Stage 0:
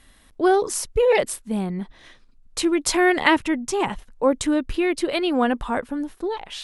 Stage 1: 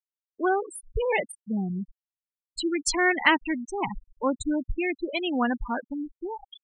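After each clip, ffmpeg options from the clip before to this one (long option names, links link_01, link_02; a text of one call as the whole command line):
ffmpeg -i in.wav -af "afftfilt=real='re*gte(hypot(re,im),0.126)':imag='im*gte(hypot(re,im),0.126)':win_size=1024:overlap=0.75,equalizer=frequency=470:width_type=o:width=1.5:gain=-9.5" out.wav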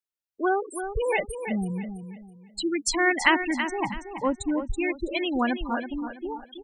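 ffmpeg -i in.wav -af "aecho=1:1:328|656|984|1312:0.355|0.11|0.0341|0.0106" out.wav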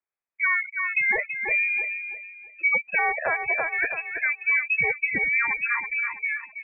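ffmpeg -i in.wav -af "acontrast=23,lowpass=frequency=2200:width_type=q:width=0.5098,lowpass=frequency=2200:width_type=q:width=0.6013,lowpass=frequency=2200:width_type=q:width=0.9,lowpass=frequency=2200:width_type=q:width=2.563,afreqshift=-2600,alimiter=limit=-14dB:level=0:latency=1:release=303" out.wav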